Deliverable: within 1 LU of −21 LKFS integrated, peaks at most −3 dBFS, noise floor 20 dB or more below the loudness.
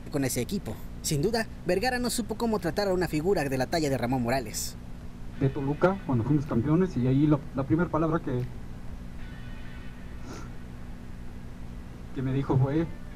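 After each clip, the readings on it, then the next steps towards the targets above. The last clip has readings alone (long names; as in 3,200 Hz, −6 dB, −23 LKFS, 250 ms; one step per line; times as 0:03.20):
mains hum 60 Hz; hum harmonics up to 240 Hz; level of the hum −44 dBFS; background noise floor −42 dBFS; target noise floor −48 dBFS; integrated loudness −28.0 LKFS; sample peak −11.0 dBFS; target loudness −21.0 LKFS
→ hum removal 60 Hz, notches 4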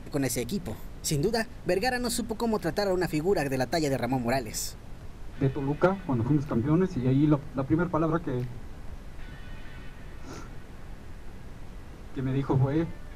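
mains hum none found; background noise floor −43 dBFS; target noise floor −48 dBFS
→ noise reduction from a noise print 6 dB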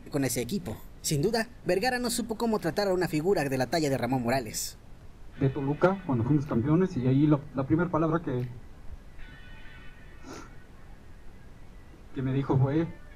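background noise floor −49 dBFS; integrated loudness −28.0 LKFS; sample peak −11.0 dBFS; target loudness −21.0 LKFS
→ level +7 dB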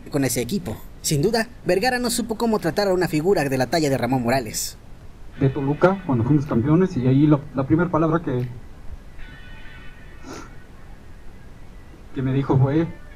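integrated loudness −21.0 LKFS; sample peak −4.0 dBFS; background noise floor −42 dBFS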